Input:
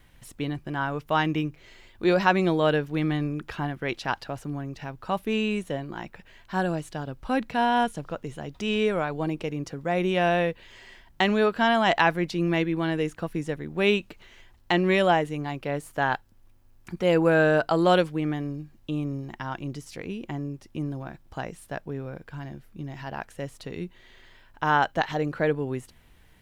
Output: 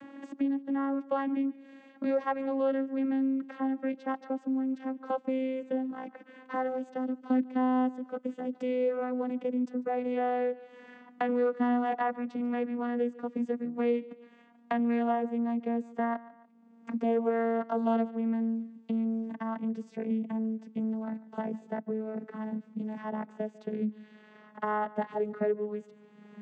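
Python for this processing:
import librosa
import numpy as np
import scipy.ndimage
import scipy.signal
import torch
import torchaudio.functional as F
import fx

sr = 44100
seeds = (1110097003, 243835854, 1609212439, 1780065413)

p1 = fx.vocoder_glide(x, sr, note=61, semitones=-5)
p2 = fx.peak_eq(p1, sr, hz=4900.0, db=-11.5, octaves=2.1)
p3 = p2 + fx.echo_feedback(p2, sr, ms=145, feedback_pct=30, wet_db=-22, dry=0)
p4 = fx.band_squash(p3, sr, depth_pct=70)
y = p4 * librosa.db_to_amplitude(-3.0)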